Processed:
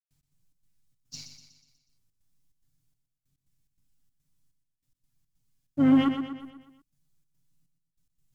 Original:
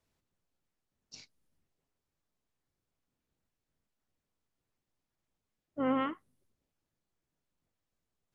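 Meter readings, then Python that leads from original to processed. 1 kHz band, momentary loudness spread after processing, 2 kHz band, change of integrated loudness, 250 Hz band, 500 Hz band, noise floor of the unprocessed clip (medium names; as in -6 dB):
+0.5 dB, 22 LU, +4.5 dB, +8.5 dB, +13.0 dB, +0.5 dB, under -85 dBFS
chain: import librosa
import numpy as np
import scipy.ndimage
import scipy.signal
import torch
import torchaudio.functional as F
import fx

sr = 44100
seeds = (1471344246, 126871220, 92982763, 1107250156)

p1 = fx.high_shelf(x, sr, hz=3900.0, db=9.0)
p2 = p1 + 0.95 * np.pad(p1, (int(7.2 * sr / 1000.0), 0))[:len(p1)]
p3 = fx.hpss(p2, sr, part='harmonic', gain_db=8)
p4 = fx.curve_eq(p3, sr, hz=(190.0, 420.0, 6300.0), db=(0, -19, -9))
p5 = fx.leveller(p4, sr, passes=1)
p6 = fx.step_gate(p5, sr, bpm=143, pattern='.x.xx.xxx.xxx..', floor_db=-60.0, edge_ms=4.5)
p7 = fx.vibrato(p6, sr, rate_hz=0.9, depth_cents=7.2)
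p8 = p7 + fx.echo_feedback(p7, sr, ms=122, feedback_pct=51, wet_db=-8.0, dry=0)
y = F.gain(torch.from_numpy(p8), 5.0).numpy()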